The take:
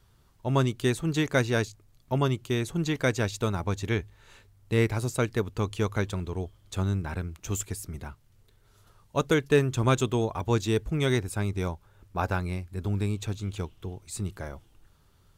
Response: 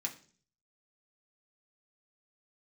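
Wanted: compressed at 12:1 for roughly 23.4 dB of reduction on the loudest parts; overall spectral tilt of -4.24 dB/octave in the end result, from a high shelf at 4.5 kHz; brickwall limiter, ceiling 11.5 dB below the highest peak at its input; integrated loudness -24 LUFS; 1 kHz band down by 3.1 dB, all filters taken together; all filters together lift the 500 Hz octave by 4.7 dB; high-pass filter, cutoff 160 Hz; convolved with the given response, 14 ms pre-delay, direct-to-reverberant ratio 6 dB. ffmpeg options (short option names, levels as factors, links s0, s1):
-filter_complex "[0:a]highpass=160,equalizer=f=500:t=o:g=7,equalizer=f=1000:t=o:g=-7,highshelf=f=4500:g=8.5,acompressor=threshold=0.0158:ratio=12,alimiter=level_in=3.16:limit=0.0631:level=0:latency=1,volume=0.316,asplit=2[s0][s1];[1:a]atrim=start_sample=2205,adelay=14[s2];[s1][s2]afir=irnorm=-1:irlink=0,volume=0.473[s3];[s0][s3]amix=inputs=2:normalize=0,volume=11.2"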